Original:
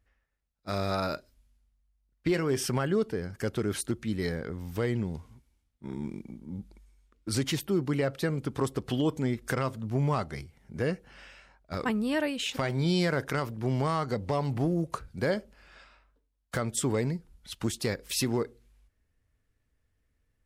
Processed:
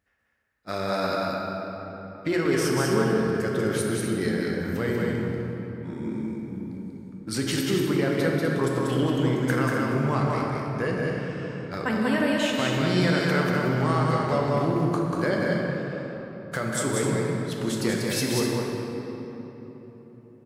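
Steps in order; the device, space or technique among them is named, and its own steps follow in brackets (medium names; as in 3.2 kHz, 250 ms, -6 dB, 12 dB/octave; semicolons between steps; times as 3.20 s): stadium PA (high-pass 120 Hz; peaking EQ 1.6 kHz +4.5 dB 0.57 oct; loudspeakers at several distances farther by 65 m -3 dB, 87 m -10 dB; reverberation RT60 3.9 s, pre-delay 9 ms, DRR -0.5 dB)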